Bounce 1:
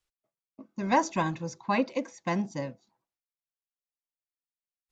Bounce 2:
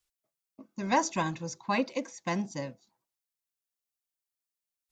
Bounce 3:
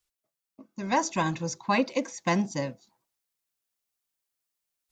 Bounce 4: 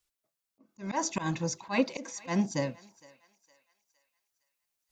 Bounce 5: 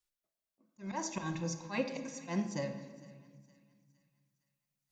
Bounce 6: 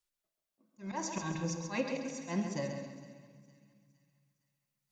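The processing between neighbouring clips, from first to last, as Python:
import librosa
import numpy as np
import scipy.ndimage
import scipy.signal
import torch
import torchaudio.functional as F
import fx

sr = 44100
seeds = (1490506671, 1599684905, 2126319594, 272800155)

y1 = fx.high_shelf(x, sr, hz=3900.0, db=9.0)
y1 = y1 * 10.0 ** (-2.5 / 20.0)
y2 = fx.rider(y1, sr, range_db=10, speed_s=0.5)
y2 = y2 * 10.0 ** (4.0 / 20.0)
y3 = fx.auto_swell(y2, sr, attack_ms=122.0)
y3 = fx.echo_thinned(y3, sr, ms=461, feedback_pct=44, hz=760.0, wet_db=-20)
y4 = fx.room_shoebox(y3, sr, seeds[0], volume_m3=1700.0, walls='mixed', distance_m=0.94)
y4 = y4 * 10.0 ** (-7.5 / 20.0)
y5 = fx.echo_feedback(y4, sr, ms=135, feedback_pct=39, wet_db=-7)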